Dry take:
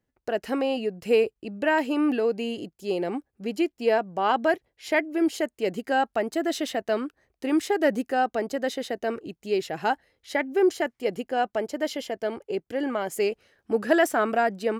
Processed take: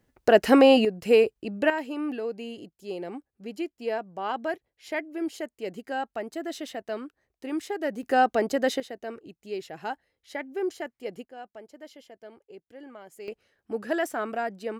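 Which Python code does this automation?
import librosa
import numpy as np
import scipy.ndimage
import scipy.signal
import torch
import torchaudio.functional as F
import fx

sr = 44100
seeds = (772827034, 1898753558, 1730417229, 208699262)

y = fx.gain(x, sr, db=fx.steps((0.0, 10.0), (0.85, 2.0), (1.7, -7.5), (8.03, 3.0), (8.8, -8.5), (11.25, -17.5), (13.28, -7.0)))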